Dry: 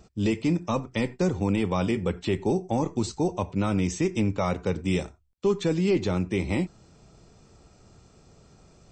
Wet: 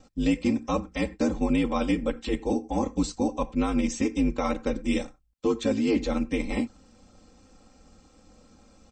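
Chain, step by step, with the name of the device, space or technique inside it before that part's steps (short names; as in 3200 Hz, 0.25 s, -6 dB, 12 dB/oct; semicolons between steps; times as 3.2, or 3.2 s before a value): ring-modulated robot voice (ring modulator 54 Hz; comb 3.8 ms, depth 92%)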